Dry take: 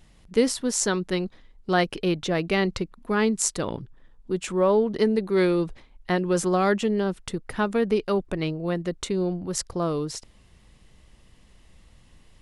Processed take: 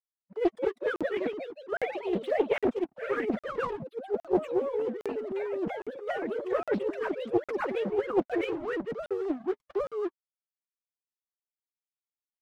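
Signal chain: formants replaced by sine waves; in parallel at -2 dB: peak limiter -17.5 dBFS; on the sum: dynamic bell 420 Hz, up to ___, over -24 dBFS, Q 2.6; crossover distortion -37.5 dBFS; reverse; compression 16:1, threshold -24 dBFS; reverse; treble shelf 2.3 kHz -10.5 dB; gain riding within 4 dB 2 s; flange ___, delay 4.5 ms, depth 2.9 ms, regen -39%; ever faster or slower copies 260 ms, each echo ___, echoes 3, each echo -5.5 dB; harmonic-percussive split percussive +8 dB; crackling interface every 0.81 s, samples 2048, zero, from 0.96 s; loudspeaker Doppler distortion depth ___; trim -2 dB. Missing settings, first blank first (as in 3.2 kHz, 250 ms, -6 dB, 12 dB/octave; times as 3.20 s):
+3 dB, 0.39 Hz, +2 st, 0.4 ms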